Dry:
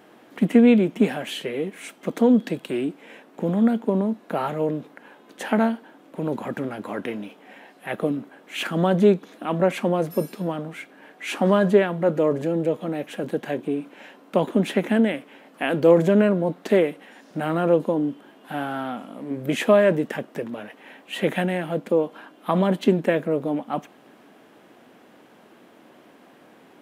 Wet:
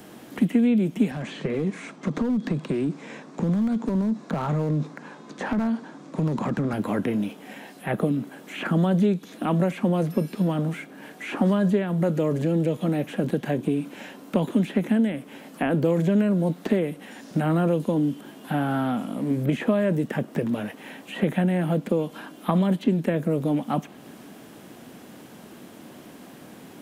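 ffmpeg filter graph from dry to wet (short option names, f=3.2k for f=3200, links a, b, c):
-filter_complex "[0:a]asettb=1/sr,asplit=3[a][b][c];[a]atrim=end=1.114[d];[b]atrim=start=1.11:end=6.73,asetpts=PTS-STARTPTS,afade=t=in:d=0.004:c=qsin,afade=t=out:st=5.616:d=0.004:c=qsin,highpass=130,equalizer=f=150:t=q:w=4:g=8,equalizer=f=1.1k:t=q:w=4:g=6,equalizer=f=3k:t=q:w=4:g=-7,lowpass=f=7.1k:w=0.5412,lowpass=f=7.1k:w=1.3066,acompressor=threshold=-27dB:ratio=4:attack=3.2:release=140:knee=1:detection=peak,asoftclip=type=hard:threshold=-25dB[e];[c]atrim=start=6.726[f];[d][e]acrossfade=d=0.004:c1=hsin:c2=qsin[g];[g][f]acrossfade=d=0.004:c1=qsin:c2=hsin,acrossover=split=3400[h][i];[i]acompressor=threshold=-49dB:ratio=4:attack=1:release=60[j];[h][j]amix=inputs=2:normalize=0,bass=f=250:g=12,treble=f=4k:g=13,acrossover=split=150|1800|3700[k][l][m][n];[k]acompressor=threshold=-37dB:ratio=4[o];[l]acompressor=threshold=-25dB:ratio=4[p];[m]acompressor=threshold=-48dB:ratio=4[q];[n]acompressor=threshold=-57dB:ratio=4[r];[o][p][q][r]amix=inputs=4:normalize=0,volume=3dB"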